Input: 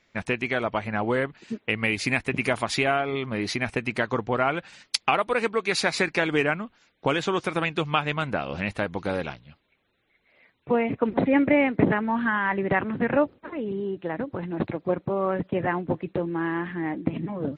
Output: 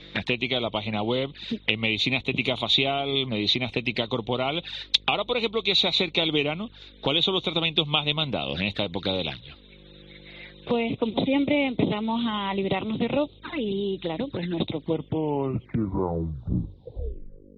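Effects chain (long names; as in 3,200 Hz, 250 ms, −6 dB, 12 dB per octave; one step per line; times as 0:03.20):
turntable brake at the end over 2.97 s
in parallel at 0 dB: downward compressor 6 to 1, threshold −33 dBFS, peak gain reduction 17.5 dB
on the sum: hum with harmonics 50 Hz, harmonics 11, −52 dBFS −4 dB per octave
flanger swept by the level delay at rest 7 ms, full sweep at −22.5 dBFS
low-pass with resonance 3,700 Hz, resonance Q 9.6
multiband upward and downward compressor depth 40%
level −2.5 dB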